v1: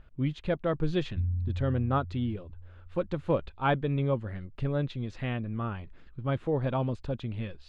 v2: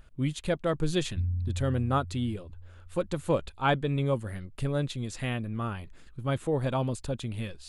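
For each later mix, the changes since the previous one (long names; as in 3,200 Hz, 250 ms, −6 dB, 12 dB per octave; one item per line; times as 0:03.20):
master: remove high-frequency loss of the air 250 metres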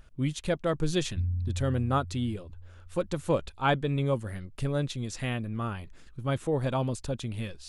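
master: add parametric band 5,700 Hz +5.5 dB 0.32 octaves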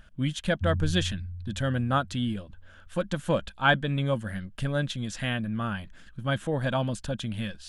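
background: entry −0.55 s
master: add thirty-one-band graphic EQ 200 Hz +9 dB, 400 Hz −8 dB, 630 Hz +4 dB, 1,600 Hz +11 dB, 3,150 Hz +8 dB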